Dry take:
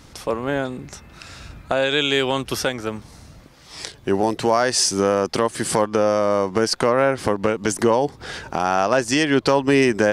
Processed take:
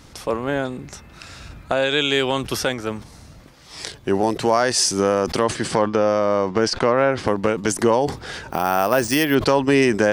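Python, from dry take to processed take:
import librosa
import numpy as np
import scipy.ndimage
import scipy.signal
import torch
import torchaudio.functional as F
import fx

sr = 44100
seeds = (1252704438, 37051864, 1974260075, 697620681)

y = fx.lowpass(x, sr, hz=5300.0, slope=12, at=(5.45, 7.27))
y = fx.resample_bad(y, sr, factor=3, down='filtered', up='hold', at=(8.5, 9.35))
y = fx.sustainer(y, sr, db_per_s=140.0)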